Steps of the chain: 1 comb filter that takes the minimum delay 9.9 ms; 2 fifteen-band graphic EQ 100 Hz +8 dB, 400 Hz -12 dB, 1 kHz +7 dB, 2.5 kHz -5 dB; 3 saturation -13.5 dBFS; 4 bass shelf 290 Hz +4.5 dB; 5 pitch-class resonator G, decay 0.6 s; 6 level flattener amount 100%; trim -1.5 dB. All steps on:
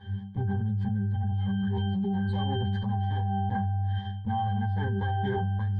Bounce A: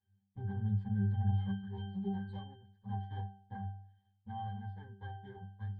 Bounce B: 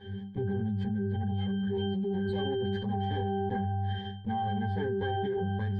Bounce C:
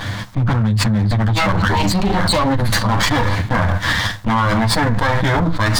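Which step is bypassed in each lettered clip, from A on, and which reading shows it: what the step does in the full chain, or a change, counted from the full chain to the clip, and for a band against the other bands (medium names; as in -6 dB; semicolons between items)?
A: 6, crest factor change +6.0 dB; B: 2, loudness change -2.5 LU; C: 5, 2 kHz band +10.0 dB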